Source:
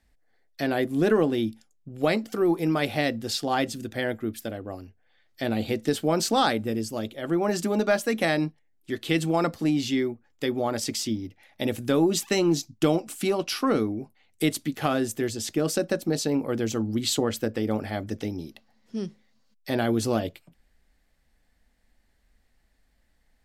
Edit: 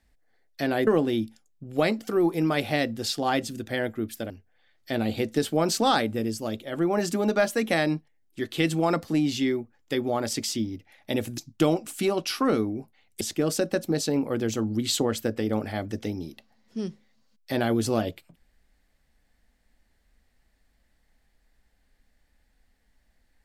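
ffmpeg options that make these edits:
ffmpeg -i in.wav -filter_complex "[0:a]asplit=5[link_01][link_02][link_03][link_04][link_05];[link_01]atrim=end=0.872[link_06];[link_02]atrim=start=1.118:end=4.552[link_07];[link_03]atrim=start=4.808:end=11.892[link_08];[link_04]atrim=start=12.598:end=14.432[link_09];[link_05]atrim=start=15.388[link_10];[link_06][link_07]acrossfade=duration=0.004:curve1=hsin:curve2=hsin[link_11];[link_11][link_08]acrossfade=duration=0.004:curve1=hsin:curve2=hsin[link_12];[link_12][link_09]acrossfade=duration=0.004:curve1=hsin:curve2=hsin[link_13];[link_13][link_10]acrossfade=duration=0.004:curve1=hsin:curve2=hsin" out.wav

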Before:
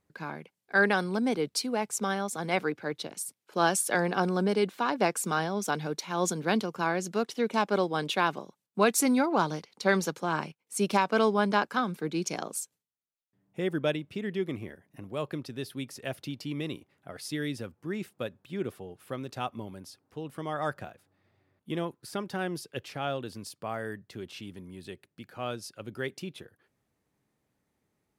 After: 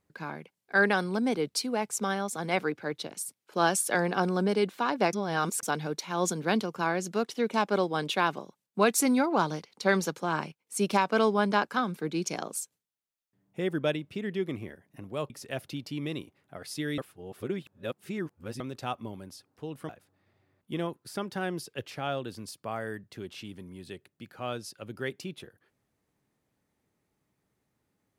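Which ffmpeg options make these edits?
ffmpeg -i in.wav -filter_complex "[0:a]asplit=7[link_01][link_02][link_03][link_04][link_05][link_06][link_07];[link_01]atrim=end=5.132[link_08];[link_02]atrim=start=5.128:end=5.632,asetpts=PTS-STARTPTS,areverse[link_09];[link_03]atrim=start=5.628:end=15.302[link_10];[link_04]atrim=start=15.838:end=17.522[link_11];[link_05]atrim=start=17.518:end=19.142,asetpts=PTS-STARTPTS,areverse[link_12];[link_06]atrim=start=19.138:end=20.432[link_13];[link_07]atrim=start=20.868[link_14];[link_08][link_09]acrossfade=duration=0.004:curve1=hsin:curve2=hsin[link_15];[link_15][link_10]acrossfade=duration=0.004:curve1=hsin:curve2=hsin[link_16];[link_16][link_11]acrossfade=duration=0.004:curve1=hsin:curve2=hsin[link_17];[link_17][link_12]acrossfade=duration=0.004:curve1=hsin:curve2=hsin[link_18];[link_18][link_13]acrossfade=duration=0.004:curve1=hsin:curve2=hsin[link_19];[link_19][link_14]acrossfade=duration=0.004:curve1=hsin:curve2=hsin" out.wav

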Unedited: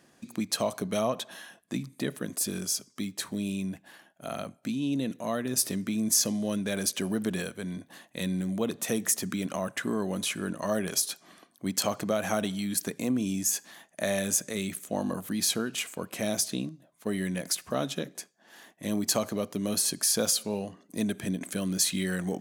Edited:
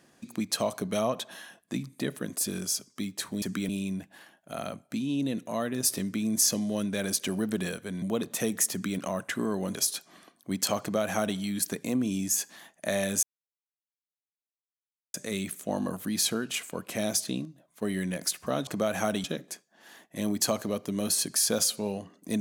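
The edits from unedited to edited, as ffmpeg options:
ffmpeg -i in.wav -filter_complex "[0:a]asplit=8[link_01][link_02][link_03][link_04][link_05][link_06][link_07][link_08];[link_01]atrim=end=3.422[link_09];[link_02]atrim=start=9.188:end=9.462[link_10];[link_03]atrim=start=3.418:end=7.752[link_11];[link_04]atrim=start=8.498:end=10.232[link_12];[link_05]atrim=start=10.898:end=14.38,asetpts=PTS-STARTPTS,afade=type=out:start_time=3.478:duration=0.004:curve=hsin,apad=pad_dur=1.91[link_13];[link_06]atrim=start=14.38:end=17.912,asetpts=PTS-STARTPTS,afade=type=in:duration=0.004:curve=hsin[link_14];[link_07]atrim=start=11.958:end=12.532[link_15];[link_08]atrim=start=17.908[link_16];[link_09][link_10]acrossfade=duration=0.004:curve1=hsin:curve2=hsin[link_17];[link_17][link_11]acrossfade=duration=0.004:curve1=hsin:curve2=hsin[link_18];[link_18][link_12]acrossfade=duration=0.004:curve1=hsin:curve2=hsin[link_19];[link_13][link_14]concat=n=2:v=0:a=1[link_20];[link_19][link_20]acrossfade=duration=0.004:curve1=hsin:curve2=hsin[link_21];[link_21][link_15]acrossfade=duration=0.004:curve1=hsin:curve2=hsin[link_22];[link_22][link_16]acrossfade=duration=0.004:curve1=hsin:curve2=hsin" out.wav

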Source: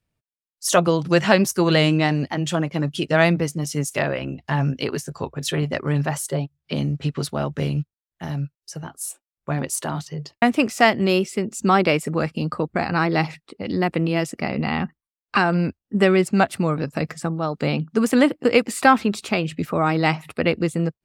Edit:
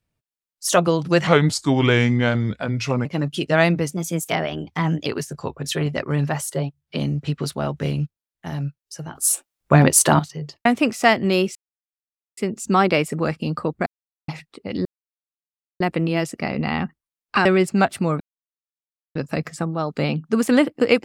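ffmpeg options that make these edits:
ffmpeg -i in.wav -filter_complex "[0:a]asplit=13[link_01][link_02][link_03][link_04][link_05][link_06][link_07][link_08][link_09][link_10][link_11][link_12][link_13];[link_01]atrim=end=1.274[link_14];[link_02]atrim=start=1.27:end=2.66,asetpts=PTS-STARTPTS,asetrate=34398,aresample=44100,atrim=end_sample=78588,asetpts=PTS-STARTPTS[link_15];[link_03]atrim=start=2.656:end=3.534[link_16];[link_04]atrim=start=3.53:end=4.83,asetpts=PTS-STARTPTS,asetrate=50274,aresample=44100,atrim=end_sample=50289,asetpts=PTS-STARTPTS[link_17];[link_05]atrim=start=4.826:end=8.922[link_18];[link_06]atrim=start=8.918:end=9.962,asetpts=PTS-STARTPTS,volume=11.5dB[link_19];[link_07]atrim=start=9.958:end=11.32,asetpts=PTS-STARTPTS,afade=type=out:start_time=1.358:duration=0.004:curve=hsin,apad=pad_dur=0.82[link_20];[link_08]atrim=start=11.32:end=12.81,asetpts=PTS-STARTPTS,afade=type=in:duration=0.004:curve=hsin,afade=type=out:start_time=1.486:duration=0.004:curve=hsin[link_21];[link_09]atrim=start=12.81:end=13.23,asetpts=PTS-STARTPTS,volume=0[link_22];[link_10]atrim=start=13.23:end=13.8,asetpts=PTS-STARTPTS,afade=type=in:duration=0.004:curve=hsin,afade=type=out:start_time=0.566:duration=0.004:curve=hsin,apad=pad_dur=0.95[link_23];[link_11]atrim=start=13.8:end=15.452,asetpts=PTS-STARTPTS,afade=type=in:duration=0.004:curve=hsin[link_24];[link_12]atrim=start=16.038:end=16.79,asetpts=PTS-STARTPTS,afade=type=out:start_time=0.748:duration=0.004:curve=hsin,apad=pad_dur=0.95[link_25];[link_13]atrim=start=16.79,asetpts=PTS-STARTPTS,afade=type=in:duration=0.004:curve=hsin[link_26];[link_14][link_15]acrossfade=duration=0.004:curve1=hsin:curve2=hsin[link_27];[link_27][link_16]acrossfade=duration=0.004:curve1=hsin:curve2=hsin[link_28];[link_28][link_17]acrossfade=duration=0.004:curve1=hsin:curve2=hsin[link_29];[link_29][link_18]acrossfade=duration=0.004:curve1=hsin:curve2=hsin[link_30];[link_30][link_19]acrossfade=duration=0.004:curve1=hsin:curve2=hsin[link_31];[link_20][link_21][link_22][link_23][link_24]concat=n=5:v=0:a=1[link_32];[link_31][link_32]acrossfade=duration=0.004:curve1=hsin:curve2=hsin[link_33];[link_25][link_26]concat=n=2:v=0:a=1[link_34];[link_33][link_34]acrossfade=duration=0.004:curve1=hsin:curve2=hsin" out.wav

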